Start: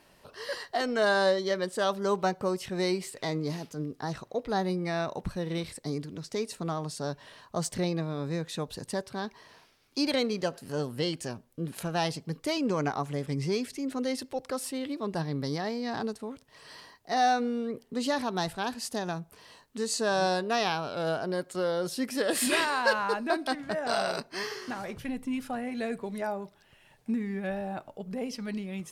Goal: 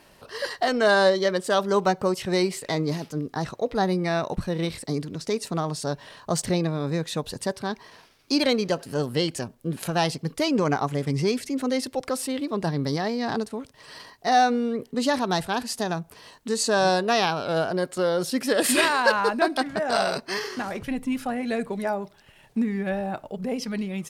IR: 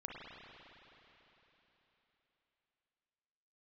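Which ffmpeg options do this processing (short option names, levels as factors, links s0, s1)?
-af "atempo=1.2,volume=2"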